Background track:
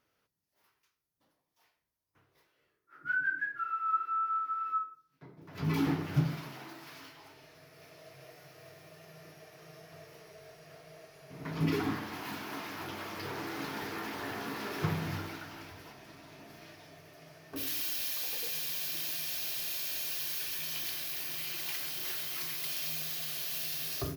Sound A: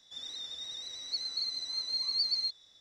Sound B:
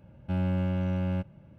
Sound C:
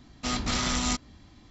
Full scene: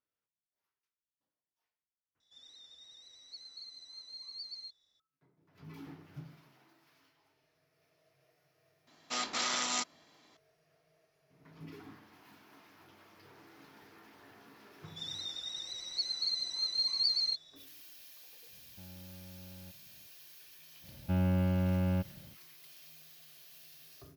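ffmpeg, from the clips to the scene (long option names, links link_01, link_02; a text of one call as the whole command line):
ffmpeg -i bed.wav -i cue0.wav -i cue1.wav -i cue2.wav -filter_complex "[1:a]asplit=2[link_01][link_02];[2:a]asplit=2[link_03][link_04];[0:a]volume=-19dB[link_05];[3:a]highpass=480[link_06];[link_02]aecho=1:1:5.5:0.56[link_07];[link_03]alimiter=level_in=6dB:limit=-24dB:level=0:latency=1:release=71,volume=-6dB[link_08];[link_05]asplit=2[link_09][link_10];[link_09]atrim=end=2.204[link_11];[link_01]atrim=end=2.8,asetpts=PTS-STARTPTS,volume=-14.5dB[link_12];[link_10]atrim=start=4.996[link_13];[link_06]atrim=end=1.5,asetpts=PTS-STARTPTS,volume=-3.5dB,afade=type=in:duration=0.004:curve=hsin,afade=type=out:start_time=1.496:duration=0.004:curve=hsin,adelay=8870[link_14];[link_07]atrim=end=2.8,asetpts=PTS-STARTPTS,volume=-1dB,afade=type=in:duration=0.004:curve=hsin,afade=type=out:start_time=2.796:duration=0.004:curve=hsin,adelay=14850[link_15];[link_08]atrim=end=1.58,asetpts=PTS-STARTPTS,volume=-16dB,afade=type=in:duration=0.004:curve=hsin,afade=type=out:start_time=1.576:duration=0.004:curve=hsin,adelay=18490[link_16];[link_04]atrim=end=1.58,asetpts=PTS-STARTPTS,volume=-1.5dB,afade=type=in:duration=0.1,afade=type=out:start_time=1.48:duration=0.1,adelay=20800[link_17];[link_11][link_12]acrossfade=duration=0.004:curve1=hsin:curve2=hsin[link_18];[link_18][link_13]acrossfade=duration=0.004:curve1=hsin:curve2=hsin[link_19];[link_19][link_14][link_15][link_16][link_17]amix=inputs=5:normalize=0" out.wav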